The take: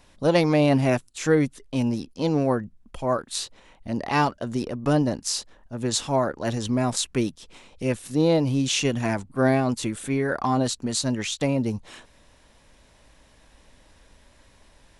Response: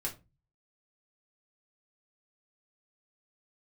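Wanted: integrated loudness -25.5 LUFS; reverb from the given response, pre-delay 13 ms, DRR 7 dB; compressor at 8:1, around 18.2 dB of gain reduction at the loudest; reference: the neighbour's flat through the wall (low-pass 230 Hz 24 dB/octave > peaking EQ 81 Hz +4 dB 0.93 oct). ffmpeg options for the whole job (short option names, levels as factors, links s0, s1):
-filter_complex "[0:a]acompressor=threshold=0.02:ratio=8,asplit=2[s0][s1];[1:a]atrim=start_sample=2205,adelay=13[s2];[s1][s2]afir=irnorm=-1:irlink=0,volume=0.376[s3];[s0][s3]amix=inputs=2:normalize=0,lowpass=f=230:w=0.5412,lowpass=f=230:w=1.3066,equalizer=f=81:t=o:w=0.93:g=4,volume=7.08"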